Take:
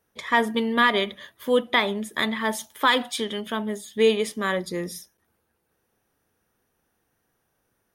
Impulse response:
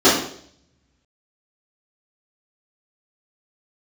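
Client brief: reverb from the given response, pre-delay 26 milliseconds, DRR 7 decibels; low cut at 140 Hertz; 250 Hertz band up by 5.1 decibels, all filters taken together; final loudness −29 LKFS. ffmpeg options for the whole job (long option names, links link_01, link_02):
-filter_complex "[0:a]highpass=140,equalizer=frequency=250:width_type=o:gain=6.5,asplit=2[link_01][link_02];[1:a]atrim=start_sample=2205,adelay=26[link_03];[link_02][link_03]afir=irnorm=-1:irlink=0,volume=-32.5dB[link_04];[link_01][link_04]amix=inputs=2:normalize=0,volume=-7.5dB"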